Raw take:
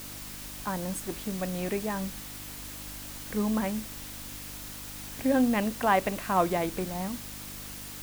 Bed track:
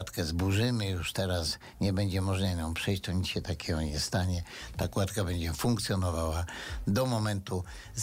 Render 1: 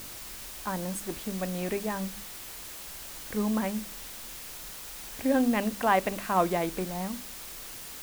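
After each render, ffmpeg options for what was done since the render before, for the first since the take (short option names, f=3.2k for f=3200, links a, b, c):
-af "bandreject=f=50:t=h:w=4,bandreject=f=100:t=h:w=4,bandreject=f=150:t=h:w=4,bandreject=f=200:t=h:w=4,bandreject=f=250:t=h:w=4,bandreject=f=300:t=h:w=4"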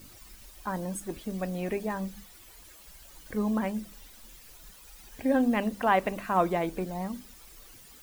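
-af "afftdn=nr=13:nf=-43"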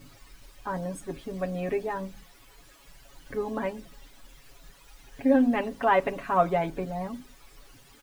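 -af "lowpass=f=3.2k:p=1,aecho=1:1:7.2:0.81"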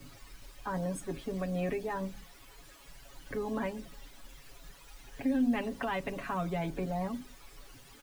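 -filter_complex "[0:a]acrossover=split=230|3000[a][b][c];[b]acompressor=threshold=-31dB:ratio=6[d];[a][d][c]amix=inputs=3:normalize=0,acrossover=split=270|1200[e][f][g];[f]alimiter=level_in=6.5dB:limit=-24dB:level=0:latency=1,volume=-6.5dB[h];[e][h][g]amix=inputs=3:normalize=0"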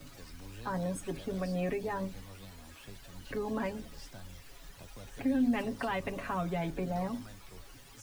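-filter_complex "[1:a]volume=-21dB[a];[0:a][a]amix=inputs=2:normalize=0"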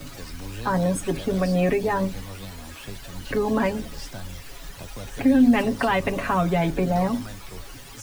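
-af "volume=12dB"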